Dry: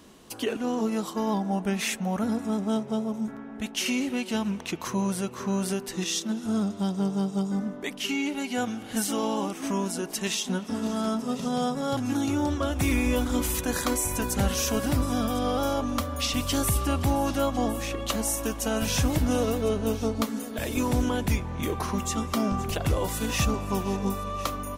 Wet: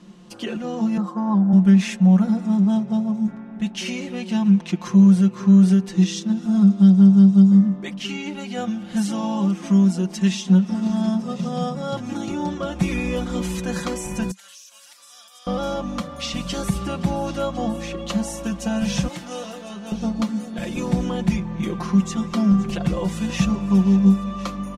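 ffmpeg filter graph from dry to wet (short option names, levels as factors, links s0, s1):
-filter_complex "[0:a]asettb=1/sr,asplit=3[s0][s1][s2];[s0]atrim=end=0.974[s3];[s1]atrim=start=0.97:end=1.53,asetpts=PTS-STARTPTS,afade=t=in:d=0.004:c=qsin,afade=t=out:st=0.556:d=0.004:c=qsin,highpass=220,highshelf=f=2000:t=q:w=1.5:g=-11.5,aecho=1:1:3.9:0.31,atrim=end_sample=24696[s4];[s2]atrim=start=1.526[s5];[s3][s4]acrossfade=d=0.004:c1=hsin:c2=qsin[s6];[s6][s5]acrossfade=d=0.004:c1=qsin:c2=hsin,asettb=1/sr,asplit=3[s7][s8][s9];[s7]atrim=end=14.314[s10];[s8]atrim=start=14.31:end=15.47,asetpts=PTS-STARTPTS,afade=t=in:d=0.004:c=qsin,afade=t=out:st=1.156:d=0.004:c=qsin,highpass=870,aderivative,acompressor=threshold=0.0141:ratio=16:attack=3.2:release=140:knee=1:detection=peak[s11];[s9]atrim=start=15.466[s12];[s10][s11]acrossfade=d=0.004:c1=hsin:c2=qsin[s13];[s13][s12]acrossfade=d=0.004:c1=qsin:c2=hsin,asettb=1/sr,asplit=3[s14][s15][s16];[s14]atrim=end=19.084[s17];[s15]atrim=start=19.08:end=19.92,asetpts=PTS-STARTPTS,afade=t=in:d=0.004:c=qsin,afade=t=out:st=0.836:d=0.004:c=qsin,highpass=f=1100:p=1,asplit=2[s18][s19];[s19]adelay=24,volume=0.398[s20];[s18][s20]amix=inputs=2:normalize=0,atrim=end_sample=37044[s21];[s16]atrim=start=19.916[s22];[s17][s21]acrossfade=d=0.004:c1=hsin:c2=qsin[s23];[s23][s22]acrossfade=d=0.004:c1=qsin:c2=hsin,lowpass=6600,equalizer=f=190:t=o:w=0.45:g=14.5,aecho=1:1:5.7:0.79,volume=0.794"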